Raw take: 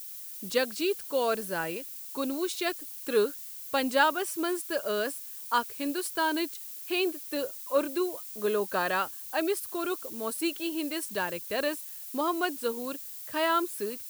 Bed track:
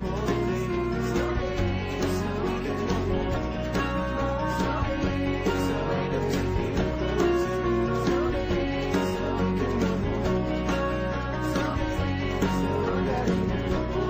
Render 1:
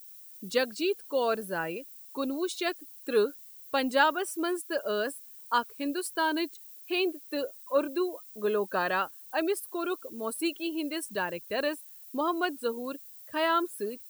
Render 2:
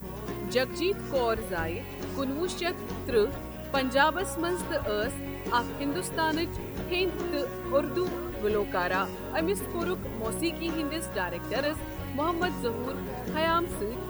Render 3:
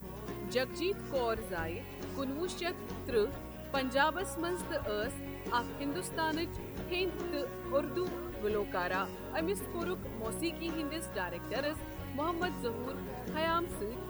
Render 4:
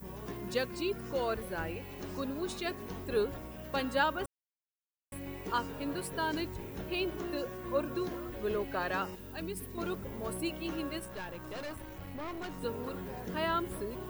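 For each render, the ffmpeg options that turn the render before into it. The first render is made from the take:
-af "afftdn=nr=11:nf=-42"
-filter_complex "[1:a]volume=0.316[s0];[0:a][s0]amix=inputs=2:normalize=0"
-af "volume=0.501"
-filter_complex "[0:a]asettb=1/sr,asplit=3[s0][s1][s2];[s0]atrim=end=9.154[s3];[s1]atrim=start=9.15:end=9.78,asetpts=PTS-STARTPTS,afade=t=in:d=0.004:c=qsin,afade=t=out:st=0.626:d=0.004:c=qsin,equalizer=f=830:t=o:w=2.5:g=-11[s4];[s2]atrim=start=9.776[s5];[s3][s4]acrossfade=d=0.004:c1=hsin:c2=qsin[s6];[s6][s5]acrossfade=d=0.004:c1=qsin:c2=hsin,asettb=1/sr,asplit=3[s7][s8][s9];[s7]atrim=end=10.994[s10];[s8]atrim=start=10.99:end=12.62,asetpts=PTS-STARTPTS,afade=t=in:d=0.004:c=qsin,afade=t=out:st=1.626:d=0.004:c=qsin,aeval=exprs='(tanh(70.8*val(0)+0.5)-tanh(0.5))/70.8':c=same[s11];[s9]atrim=start=12.616[s12];[s10][s11]acrossfade=d=0.004:c1=hsin:c2=qsin[s13];[s13][s12]acrossfade=d=0.004:c1=qsin:c2=hsin,asplit=3[s14][s15][s16];[s14]atrim=end=4.26,asetpts=PTS-STARTPTS,afade=t=out:st=4.256:d=0.004:c=hsin[s17];[s15]atrim=start=4.26:end=5.12,asetpts=PTS-STARTPTS,volume=0[s18];[s16]atrim=start=5.12,asetpts=PTS-STARTPTS,afade=t=in:d=0.004:c=hsin[s19];[s17][s18][s19]concat=n=3:v=0:a=1"

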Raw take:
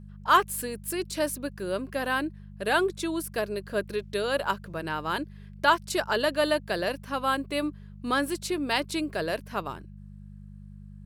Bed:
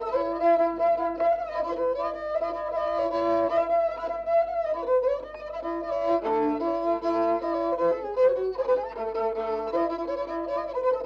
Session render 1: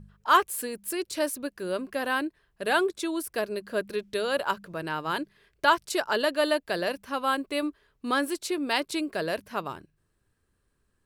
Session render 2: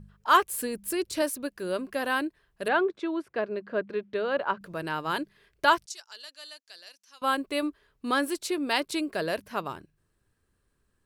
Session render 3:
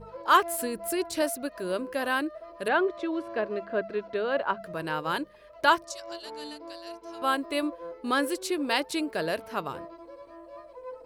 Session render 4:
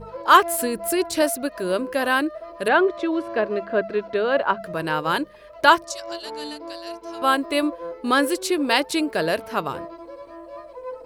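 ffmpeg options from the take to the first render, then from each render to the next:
-af "bandreject=f=50:t=h:w=4,bandreject=f=100:t=h:w=4,bandreject=f=150:t=h:w=4,bandreject=f=200:t=h:w=4"
-filter_complex "[0:a]asettb=1/sr,asplit=3[s0][s1][s2];[s0]atrim=end=0.514[s3];[s1]atrim=start=0.51:end=1.22,asetpts=PTS-STARTPTS,afade=t=in:d=0.004:c=qsin,afade=t=out:st=0.706:d=0.004:c=qsin,lowshelf=f=210:g=9[s4];[s2]atrim=start=1.216[s5];[s3][s4]acrossfade=d=0.004:c1=hsin:c2=qsin[s6];[s6][s5]acrossfade=d=0.004:c1=qsin:c2=hsin,asettb=1/sr,asplit=3[s7][s8][s9];[s7]atrim=end=2.684[s10];[s8]atrim=start=2.68:end=4.61,asetpts=PTS-STARTPTS,afade=t=in:d=0.004:c=qsin,afade=t=out:st=1.926:d=0.004:c=qsin,highpass=120,lowpass=2200[s11];[s9]atrim=start=4.606[s12];[s10][s11]acrossfade=d=0.004:c1=hsin:c2=qsin[s13];[s13][s12]acrossfade=d=0.004:c1=qsin:c2=hsin,asettb=1/sr,asplit=3[s14][s15][s16];[s14]atrim=end=5.864[s17];[s15]atrim=start=5.86:end=7.22,asetpts=PTS-STARTPTS,afade=t=in:d=0.004:c=qsin,afade=t=out:st=1.356:d=0.004:c=qsin,bandpass=f=6000:t=q:w=3[s18];[s16]atrim=start=7.216[s19];[s17][s18]acrossfade=d=0.004:c1=hsin:c2=qsin[s20];[s20][s19]acrossfade=d=0.004:c1=qsin:c2=hsin"
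-filter_complex "[1:a]volume=0.15[s0];[0:a][s0]amix=inputs=2:normalize=0"
-af "volume=2.24"

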